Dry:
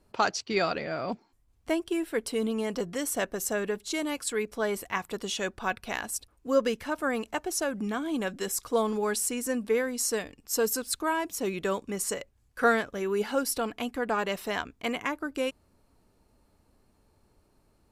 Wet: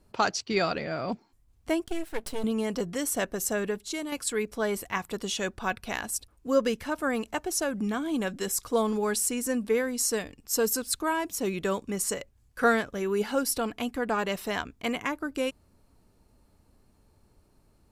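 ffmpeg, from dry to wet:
-filter_complex "[0:a]asettb=1/sr,asplit=3[a][b][c];[a]atrim=end=1.844[d];[b]atrim=start=1.84:end=2.44,asetpts=PTS-STARTPTS,afade=t=in:d=0.004:c=qsin,afade=t=out:st=0.596:d=0.004:c=qsin,aeval=exprs='max(val(0),0)':c=same[e];[c]atrim=start=2.436[f];[d][e]acrossfade=d=0.004:c1=hsin:c2=qsin[g];[g][f]acrossfade=d=0.004:c1=qsin:c2=hsin,asplit=2[h][i];[h]atrim=end=4.12,asetpts=PTS-STARTPTS,afade=t=out:st=3.66:d=0.46:silence=0.501187[j];[i]atrim=start=4.12,asetpts=PTS-STARTPTS,afade=t=in:d=0.004:c=hsin:silence=0.501187[k];[j][k]concat=n=2:v=0:a=1,bass=f=250:g=4,treble=f=4k:g=2"

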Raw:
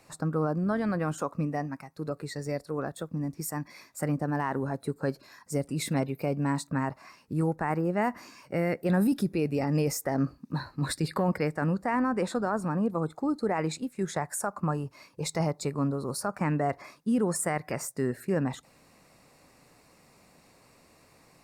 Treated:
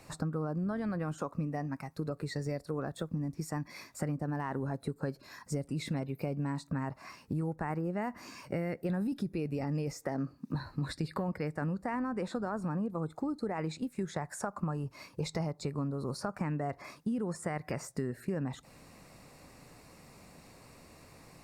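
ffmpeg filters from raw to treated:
-filter_complex "[0:a]asettb=1/sr,asplit=3[a][b][c];[a]atrim=end=10.034[d];[b]atrim=start=10.03:end=10.55,asetpts=PTS-STARTPTS,afade=t=in:d=0.004:c=qsin,afade=t=out:st=0.516:d=0.004:c=qsin,highpass=130[e];[c]atrim=start=10.546[f];[d][e]acrossfade=d=0.004:c1=hsin:c2=qsin[g];[g][f]acrossfade=d=0.004:c1=qsin:c2=hsin,acrossover=split=6200[h][i];[i]acompressor=threshold=-52dB:ratio=4:attack=1:release=60[j];[h][j]amix=inputs=2:normalize=0,lowshelf=f=170:g=7,acompressor=threshold=-35dB:ratio=5,volume=2.5dB"

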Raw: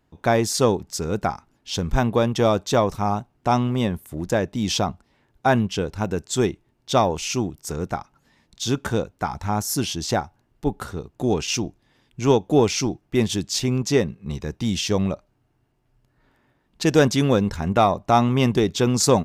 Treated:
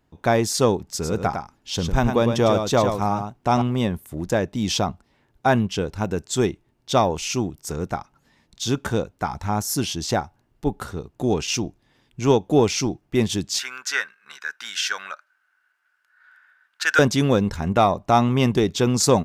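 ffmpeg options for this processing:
-filter_complex "[0:a]asettb=1/sr,asplit=3[a][b][c];[a]atrim=end=0.844[d];[b]atrim=start=0.84:end=3.62,asetpts=PTS-STARTPTS,afade=t=in:d=0.004:c=qsin,afade=t=out:st=2.776:d=0.004:c=qsin,aecho=1:1:104:0.473,atrim=end_sample=122598[e];[c]atrim=start=3.616[f];[d][e]acrossfade=d=0.004:c1=hsin:c2=qsin[g];[g][f]acrossfade=d=0.004:c1=qsin:c2=hsin,asettb=1/sr,asplit=3[h][i][j];[h]atrim=end=13.594[k];[i]atrim=start=13.59:end=16.99,asetpts=PTS-STARTPTS,afade=t=in:d=0.004:c=qsin,afade=t=out:st=3.396:d=0.004:c=qsin,highpass=f=1.5k:t=q:w=14[l];[j]atrim=start=16.986[m];[k][l]acrossfade=d=0.004:c1=hsin:c2=qsin[n];[n][m]acrossfade=d=0.004:c1=qsin:c2=hsin"

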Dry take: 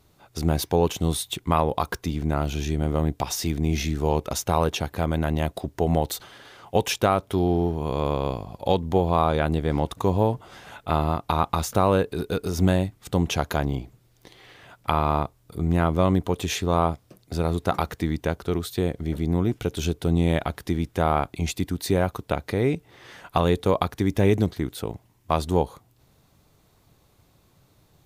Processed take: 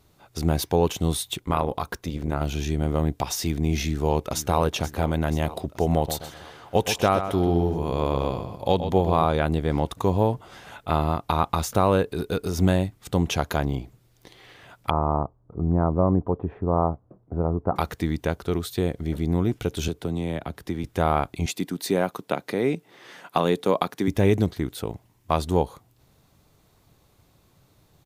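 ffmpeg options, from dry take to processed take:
-filter_complex "[0:a]asettb=1/sr,asplit=3[a][b][c];[a]atrim=end=1.404[d];[b]atrim=start=1.4:end=2.41,asetpts=PTS-STARTPTS,afade=t=in:d=0.004:c=qsin,afade=t=out:st=1.006:d=0.004:c=qsin,tremolo=f=210:d=0.621[e];[c]atrim=start=2.406[f];[d][e]acrossfade=d=0.004:c1=hsin:c2=qsin[g];[g][f]acrossfade=d=0.004:c1=qsin:c2=hsin,asplit=2[h][i];[i]afade=t=in:st=3.84:d=0.01,afade=t=out:st=4.58:d=0.01,aecho=0:1:480|960|1440|1920|2400|2880|3360|3840:0.211349|0.137377|0.0892949|0.0580417|0.0377271|0.0245226|0.0159397|0.0103608[j];[h][j]amix=inputs=2:normalize=0,asettb=1/sr,asplit=3[k][l][m];[k]atrim=end=5.954[n];[l]atrim=start=5.95:end=9.25,asetpts=PTS-STARTPTS,afade=t=in:d=0.004:c=qsin,afade=t=out:st=3.296:d=0.004:c=qsin,asplit=2[o][p];[p]adelay=126,lowpass=f=4.4k:p=1,volume=-9dB,asplit=2[q][r];[r]adelay=126,lowpass=f=4.4k:p=1,volume=0.36,asplit=2[s][t];[t]adelay=126,lowpass=f=4.4k:p=1,volume=0.36,asplit=2[u][v];[v]adelay=126,lowpass=f=4.4k:p=1,volume=0.36[w];[o][q][s][u][w]amix=inputs=5:normalize=0,atrim=end_sample=145530[x];[m]atrim=start=9.246[y];[n][x]acrossfade=d=0.004:c1=hsin:c2=qsin[z];[z][y]acrossfade=d=0.004:c1=qsin:c2=hsin,asettb=1/sr,asplit=3[aa][ab][ac];[aa]atrim=end=14.904[ad];[ab]atrim=start=14.9:end=17.76,asetpts=PTS-STARTPTS,afade=t=in:d=0.004:c=qsin,afade=t=out:st=2.856:d=0.004:c=qsin,lowpass=f=1.1k:w=0.5412,lowpass=f=1.1k:w=1.3066[ae];[ac]atrim=start=17.756[af];[ad][ae]acrossfade=d=0.004:c1=hsin:c2=qsin[ag];[ag][af]acrossfade=d=0.004:c1=qsin:c2=hsin,asettb=1/sr,asplit=3[ah][ai][aj];[ah]atrim=end=19.884[ak];[ai]atrim=start=19.88:end=20.84,asetpts=PTS-STARTPTS,afade=t=in:d=0.004:c=qsin,afade=t=out:st=0.956:d=0.004:c=qsin,acrossover=split=130|470|2200[al][am][an][ao];[al]acompressor=threshold=-39dB:ratio=3[ap];[am]acompressor=threshold=-28dB:ratio=3[aq];[an]acompressor=threshold=-36dB:ratio=3[ar];[ao]acompressor=threshold=-47dB:ratio=3[as];[ap][aq][ar][as]amix=inputs=4:normalize=0[at];[aj]atrim=start=20.836[au];[ak][at]acrossfade=d=0.004:c1=hsin:c2=qsin[av];[av][au]acrossfade=d=0.004:c1=qsin:c2=hsin,asettb=1/sr,asplit=3[aw][ax][ay];[aw]atrim=end=21.464[az];[ax]atrim=start=21.46:end=24.08,asetpts=PTS-STARTPTS,afade=t=in:d=0.004:c=qsin,afade=t=out:st=2.616:d=0.004:c=qsin,highpass=f=160:w=0.5412,highpass=f=160:w=1.3066[ba];[ay]atrim=start=24.076[bb];[az][ba]acrossfade=d=0.004:c1=hsin:c2=qsin[bc];[bc][bb]acrossfade=d=0.004:c1=qsin:c2=hsin"

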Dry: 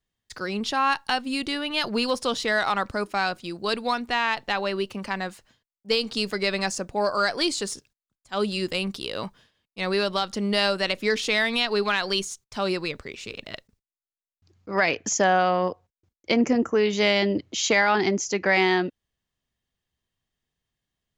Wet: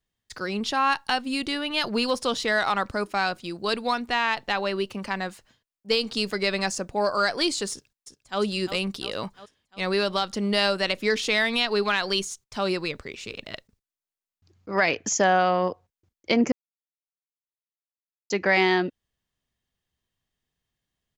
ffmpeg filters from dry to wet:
-filter_complex "[0:a]asplit=2[a][b];[b]afade=t=in:st=7.71:d=0.01,afade=t=out:st=8.4:d=0.01,aecho=0:1:350|700|1050|1400|1750|2100|2450:0.316228|0.189737|0.113842|0.0683052|0.0409831|0.0245899|0.0147539[c];[a][c]amix=inputs=2:normalize=0,asplit=3[d][e][f];[d]atrim=end=16.52,asetpts=PTS-STARTPTS,afade=t=out:st=16.516:d=0.004:c=hsin[g];[e]atrim=start=16.52:end=18.3,asetpts=PTS-STARTPTS,volume=0[h];[f]atrim=start=18.3,asetpts=PTS-STARTPTS,afade=t=in:d=0.004:c=hsin[i];[g][h][i]concat=n=3:v=0:a=1"

